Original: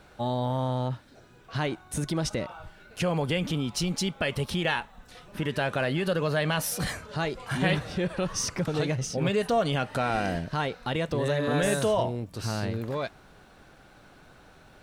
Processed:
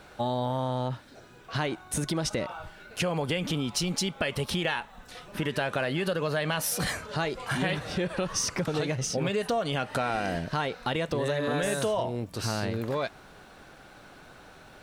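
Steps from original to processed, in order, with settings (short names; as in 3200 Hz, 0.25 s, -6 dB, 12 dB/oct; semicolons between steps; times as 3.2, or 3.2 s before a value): low shelf 210 Hz -5.5 dB; compressor 4:1, threshold -30 dBFS, peak gain reduction 8.5 dB; gain +4.5 dB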